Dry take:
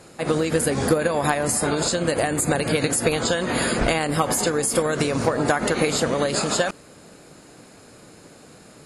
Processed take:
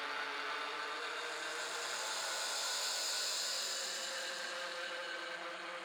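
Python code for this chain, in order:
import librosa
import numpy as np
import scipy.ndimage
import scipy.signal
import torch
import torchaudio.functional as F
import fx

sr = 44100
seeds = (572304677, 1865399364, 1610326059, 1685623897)

y = fx.stretch_grains(x, sr, factor=0.66, grain_ms=67.0)
y = fx.peak_eq(y, sr, hz=9300.0, db=-6.0, octaves=1.4)
y = fx.paulstretch(y, sr, seeds[0], factor=28.0, window_s=0.1, from_s=1.13)
y = fx.doubler(y, sr, ms=21.0, db=-5.0)
y = np.clip(y, -10.0 ** (-23.0 / 20.0), 10.0 ** (-23.0 / 20.0))
y = scipy.signal.sosfilt(scipy.signal.butter(2, 1400.0, 'highpass', fs=sr, output='sos'), y)
y = fx.high_shelf(y, sr, hz=4400.0, db=-9.0)
y = F.gain(torch.from_numpy(y), -4.0).numpy()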